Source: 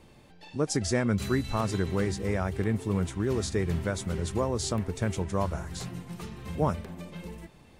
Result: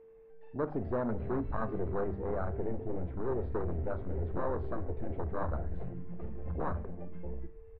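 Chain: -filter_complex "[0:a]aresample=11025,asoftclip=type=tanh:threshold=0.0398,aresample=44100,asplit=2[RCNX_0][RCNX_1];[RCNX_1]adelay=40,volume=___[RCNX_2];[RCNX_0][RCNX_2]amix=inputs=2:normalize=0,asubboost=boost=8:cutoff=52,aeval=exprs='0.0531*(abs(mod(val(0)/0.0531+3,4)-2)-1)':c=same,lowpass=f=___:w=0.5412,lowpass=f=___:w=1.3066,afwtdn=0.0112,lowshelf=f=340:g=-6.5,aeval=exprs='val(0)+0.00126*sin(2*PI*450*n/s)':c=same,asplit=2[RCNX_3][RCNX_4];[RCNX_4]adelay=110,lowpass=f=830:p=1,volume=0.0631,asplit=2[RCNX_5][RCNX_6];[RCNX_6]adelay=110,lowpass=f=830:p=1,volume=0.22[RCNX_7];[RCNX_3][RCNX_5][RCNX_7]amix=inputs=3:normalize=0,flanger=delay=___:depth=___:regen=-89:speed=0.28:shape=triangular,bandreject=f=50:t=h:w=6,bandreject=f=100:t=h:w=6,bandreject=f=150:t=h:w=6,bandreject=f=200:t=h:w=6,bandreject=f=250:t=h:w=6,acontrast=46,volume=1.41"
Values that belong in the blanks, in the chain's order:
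0.237, 2000, 2000, 8.8, 5.9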